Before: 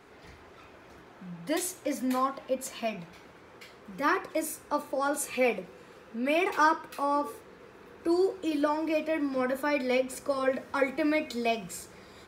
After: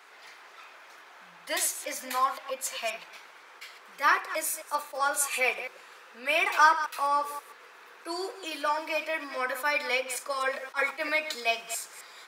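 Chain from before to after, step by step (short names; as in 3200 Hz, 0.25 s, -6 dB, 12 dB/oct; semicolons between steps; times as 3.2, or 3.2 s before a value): reverse delay 0.132 s, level -12 dB; HPF 1000 Hz 12 dB/oct; attack slew limiter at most 380 dB/s; gain +6 dB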